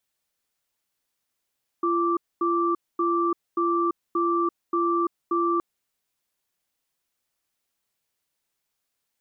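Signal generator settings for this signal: cadence 342 Hz, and 1.17 kHz, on 0.34 s, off 0.24 s, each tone -23 dBFS 3.77 s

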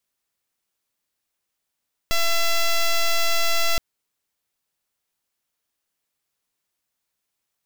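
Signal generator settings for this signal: pulse 673 Hz, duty 7% -18.5 dBFS 1.67 s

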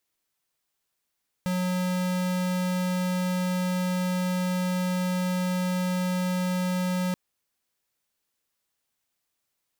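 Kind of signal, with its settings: tone square 182 Hz -26.5 dBFS 5.68 s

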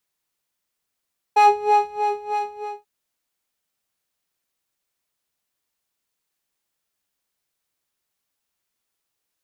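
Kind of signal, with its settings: synth patch with filter wobble G#5, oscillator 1 square, interval -12 st, oscillator 2 level -1.5 dB, noise -20 dB, filter bandpass, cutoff 240 Hz, Q 0.95, filter envelope 1 oct, filter decay 0.15 s, filter sustain 0%, attack 9.4 ms, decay 0.65 s, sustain -9 dB, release 0.43 s, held 1.06 s, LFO 3.2 Hz, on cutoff 1.7 oct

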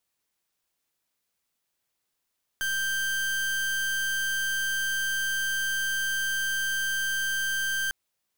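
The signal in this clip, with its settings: pulse 1.57 kHz, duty 37% -28 dBFS 5.30 s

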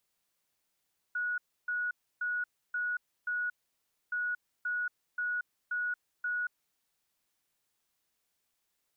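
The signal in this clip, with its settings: beep pattern sine 1.46 kHz, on 0.23 s, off 0.30 s, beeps 5, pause 0.62 s, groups 2, -30 dBFS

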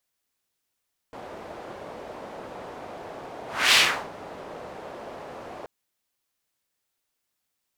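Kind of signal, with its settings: whoosh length 4.53 s, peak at 2.61 s, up 0.30 s, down 0.38 s, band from 610 Hz, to 3.1 kHz, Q 1.4, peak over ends 23 dB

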